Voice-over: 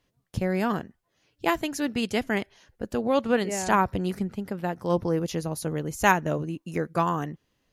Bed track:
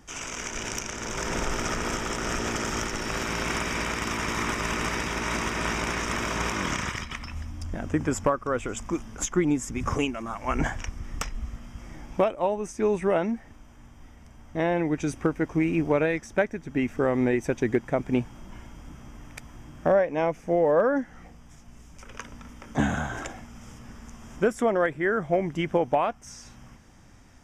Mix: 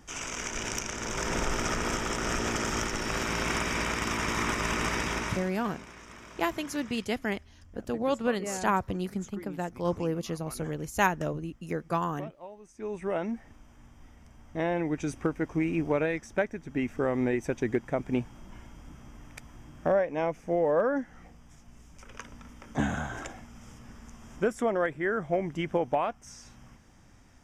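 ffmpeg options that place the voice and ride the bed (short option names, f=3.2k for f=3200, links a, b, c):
-filter_complex "[0:a]adelay=4950,volume=-4.5dB[a];[1:a]volume=14.5dB,afade=t=out:st=5.14:d=0.35:silence=0.11885,afade=t=in:st=12.67:d=0.72:silence=0.16788[b];[a][b]amix=inputs=2:normalize=0"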